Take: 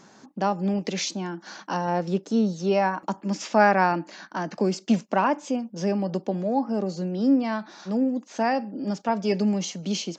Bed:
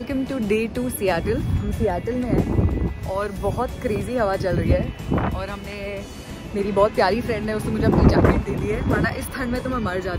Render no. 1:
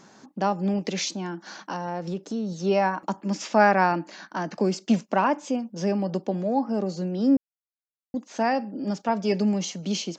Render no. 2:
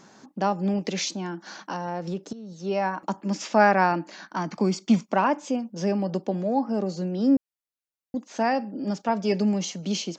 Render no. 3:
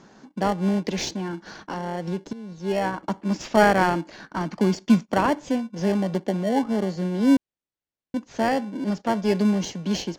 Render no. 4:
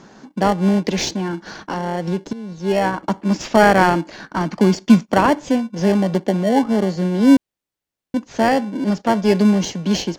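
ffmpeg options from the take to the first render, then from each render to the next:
-filter_complex "[0:a]asettb=1/sr,asplit=3[a][b][c];[a]atrim=end=1.094[d];[b]atrim=start=1.09:end=2.52,asetpts=PTS-STARTPTS,afade=t=in:d=0.004:c=qsin,afade=t=out:st=1.426:d=0.004:c=qsin,acompressor=threshold=-27dB:ratio=3:attack=3.2:release=140:knee=1:detection=peak[e];[c]atrim=start=2.516[f];[d][e]acrossfade=d=0.004:c1=hsin:c2=qsin[g];[g][f]acrossfade=d=0.004:c1=qsin:c2=hsin,asplit=3[h][i][j];[h]atrim=end=7.37,asetpts=PTS-STARTPTS,afade=t=out:st=7.366:d=0.004:c=hsin[k];[i]atrim=start=7.37:end=8.14,asetpts=PTS-STARTPTS,volume=0[l];[j]atrim=start=8.14,asetpts=PTS-STARTPTS,afade=t=in:d=0.004:c=hsin[m];[k][l][m]concat=n=3:v=0:a=1"
-filter_complex "[0:a]asettb=1/sr,asplit=3[a][b][c];[a]atrim=end=4.364[d];[b]atrim=start=4.36:end=5.13,asetpts=PTS-STARTPTS,afade=t=in:d=0.004:c=qsin,afade=t=out:st=0.766:d=0.004:c=qsin,aecho=1:1:0.9:0.45,atrim=end_sample=33957[e];[c]atrim=start=5.126[f];[d][e]acrossfade=d=0.004:c1=hsin:c2=qsin[g];[g][f]acrossfade=d=0.004:c1=qsin:c2=hsin,asplit=2[h][i];[h]atrim=end=2.33,asetpts=PTS-STARTPTS,afade=t=out:st=2.326:d=0.004:c=hsin:silence=0.177828[j];[i]atrim=start=2.33,asetpts=PTS-STARTPTS,afade=t=in:d=0.79:silence=0.177828[k];[j][k]concat=n=2:v=0:a=1"
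-filter_complex "[0:a]asplit=2[a][b];[b]acrusher=samples=35:mix=1:aa=0.000001,volume=-7.5dB[c];[a][c]amix=inputs=2:normalize=0,adynamicsmooth=sensitivity=3.5:basefreq=6.7k"
-af "volume=6.5dB,alimiter=limit=-1dB:level=0:latency=1"

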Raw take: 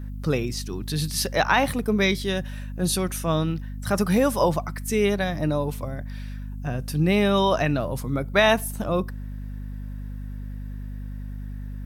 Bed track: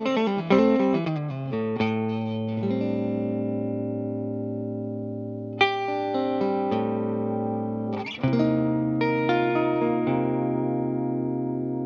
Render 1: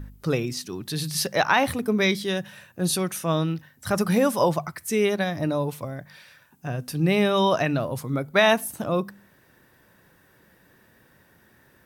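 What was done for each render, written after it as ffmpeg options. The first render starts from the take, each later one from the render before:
-af "bandreject=f=50:t=h:w=4,bandreject=f=100:t=h:w=4,bandreject=f=150:t=h:w=4,bandreject=f=200:t=h:w=4,bandreject=f=250:t=h:w=4"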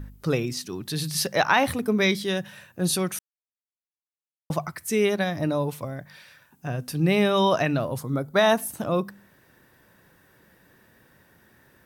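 -filter_complex "[0:a]asettb=1/sr,asplit=3[a][b][c];[a]atrim=end=7.984[d];[b]atrim=start=7.98:end=8.58,asetpts=PTS-STARTPTS,afade=t=in:d=0.004:c=qsin,afade=t=out:st=0.596:d=0.004:c=qsin,equalizer=f=2.4k:w=2:g=-9[e];[c]atrim=start=8.576[f];[d][e]acrossfade=d=0.004:c1=hsin:c2=qsin[g];[g][f]acrossfade=d=0.004:c1=qsin:c2=hsin,asplit=3[h][i][j];[h]atrim=end=3.19,asetpts=PTS-STARTPTS,afade=t=out:st=3.186:d=0.004:c=hsin[k];[i]atrim=start=3.19:end=4.5,asetpts=PTS-STARTPTS,volume=0[l];[j]atrim=start=4.5,asetpts=PTS-STARTPTS,afade=t=in:d=0.004:c=hsin[m];[k][l][m]concat=n=3:v=0:a=1"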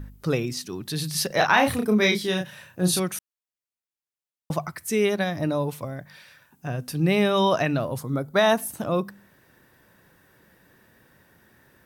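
-filter_complex "[0:a]asettb=1/sr,asplit=3[a][b][c];[a]atrim=end=1.274[d];[b]atrim=start=1.27:end=3,asetpts=PTS-STARTPTS,afade=t=in:d=0.004:c=qsin,afade=t=out:st=1.726:d=0.004:c=qsin,asplit=2[e][f];[f]adelay=33,volume=-4dB[g];[e][g]amix=inputs=2:normalize=0,atrim=end_sample=76293[h];[c]atrim=start=2.996[i];[d][h]acrossfade=d=0.004:c1=hsin:c2=qsin[j];[j][i]acrossfade=d=0.004:c1=qsin:c2=hsin"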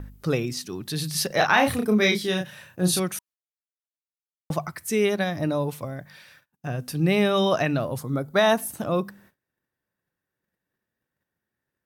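-af "bandreject=f=970:w=26,agate=range=-27dB:threshold=-53dB:ratio=16:detection=peak"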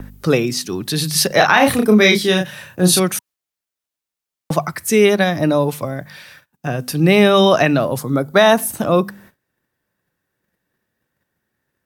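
-filter_complex "[0:a]acrossover=split=140|1300|2100[a][b][c][d];[a]acompressor=threshold=-45dB:ratio=6[e];[e][b][c][d]amix=inputs=4:normalize=0,alimiter=level_in=10dB:limit=-1dB:release=50:level=0:latency=1"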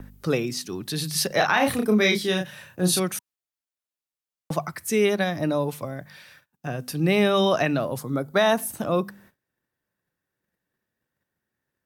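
-af "volume=-8.5dB"

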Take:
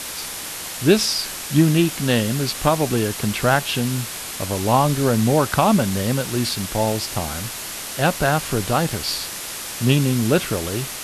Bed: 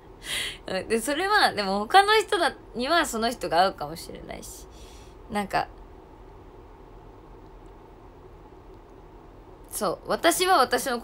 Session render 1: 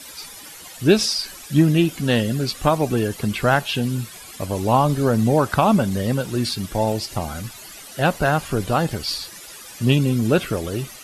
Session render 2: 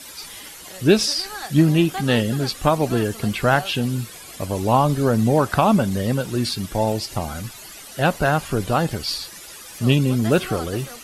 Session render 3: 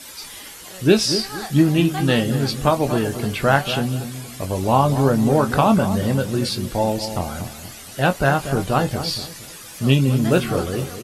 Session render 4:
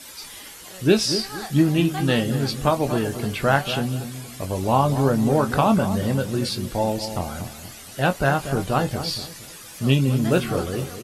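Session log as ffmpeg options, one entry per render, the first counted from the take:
-af "afftdn=nr=14:nf=-31"
-filter_complex "[1:a]volume=-13.5dB[a];[0:a][a]amix=inputs=2:normalize=0"
-filter_complex "[0:a]asplit=2[a][b];[b]adelay=22,volume=-9dB[c];[a][c]amix=inputs=2:normalize=0,asplit=2[d][e];[e]adelay=235,lowpass=f=940:p=1,volume=-9dB,asplit=2[f][g];[g]adelay=235,lowpass=f=940:p=1,volume=0.35,asplit=2[h][i];[i]adelay=235,lowpass=f=940:p=1,volume=0.35,asplit=2[j][k];[k]adelay=235,lowpass=f=940:p=1,volume=0.35[l];[f][h][j][l]amix=inputs=4:normalize=0[m];[d][m]amix=inputs=2:normalize=0"
-af "volume=-2.5dB"

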